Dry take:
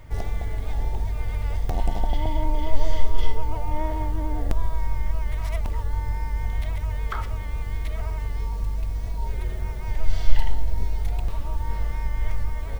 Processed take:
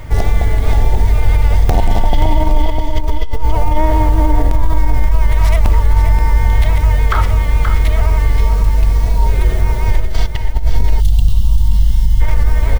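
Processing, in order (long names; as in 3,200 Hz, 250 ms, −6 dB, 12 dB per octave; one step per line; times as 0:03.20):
compressor whose output falls as the input rises −20 dBFS, ratio −1
single-tap delay 528 ms −8 dB
gain on a spectral selection 0:11.00–0:12.21, 230–2,700 Hz −18 dB
boost into a limiter +13.5 dB
level −1 dB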